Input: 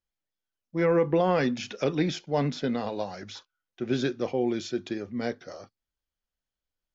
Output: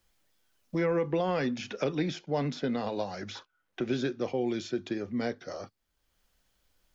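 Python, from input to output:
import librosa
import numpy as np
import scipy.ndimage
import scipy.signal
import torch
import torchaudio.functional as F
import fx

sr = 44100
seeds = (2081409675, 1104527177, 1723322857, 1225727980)

y = fx.band_squash(x, sr, depth_pct=70)
y = F.gain(torch.from_numpy(y), -3.5).numpy()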